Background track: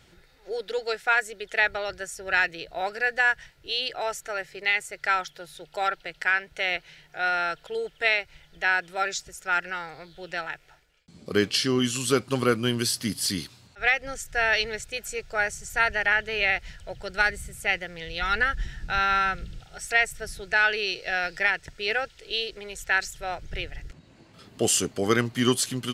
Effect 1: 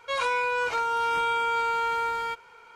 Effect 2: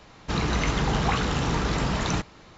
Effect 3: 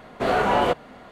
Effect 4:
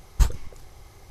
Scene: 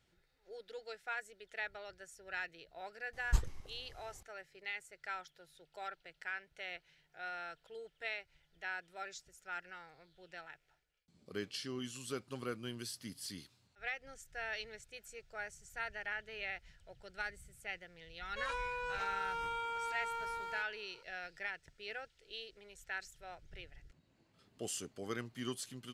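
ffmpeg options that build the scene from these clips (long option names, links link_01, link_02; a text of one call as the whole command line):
ffmpeg -i bed.wav -i cue0.wav -i cue1.wav -i cue2.wav -i cue3.wav -filter_complex "[0:a]volume=-18.5dB[link_01];[4:a]lowpass=12000,atrim=end=1.1,asetpts=PTS-STARTPTS,volume=-11dB,afade=type=in:duration=0.004:curve=hsin,afade=type=out:start_time=1.096:duration=0.004:curve=hsin,adelay=138033S[link_02];[1:a]atrim=end=2.75,asetpts=PTS-STARTPTS,volume=-14dB,afade=type=in:duration=0.004:curve=hsin,afade=type=out:start_time=2.746:duration=0.004:curve=hsin,adelay=806148S[link_03];[link_01][link_02][link_03]amix=inputs=3:normalize=0" out.wav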